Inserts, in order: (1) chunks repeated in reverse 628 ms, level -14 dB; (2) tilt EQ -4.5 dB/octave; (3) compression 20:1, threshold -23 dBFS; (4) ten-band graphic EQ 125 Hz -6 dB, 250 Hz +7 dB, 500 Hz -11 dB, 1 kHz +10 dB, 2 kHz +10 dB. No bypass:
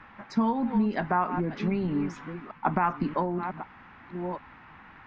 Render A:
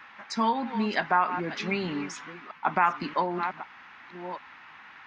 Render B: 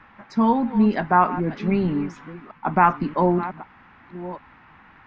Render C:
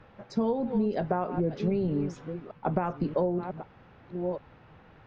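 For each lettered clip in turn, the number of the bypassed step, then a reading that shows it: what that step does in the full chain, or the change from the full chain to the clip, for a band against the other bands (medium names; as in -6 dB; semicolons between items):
2, 4 kHz band +11.5 dB; 3, mean gain reduction 4.0 dB; 4, 2 kHz band -9.0 dB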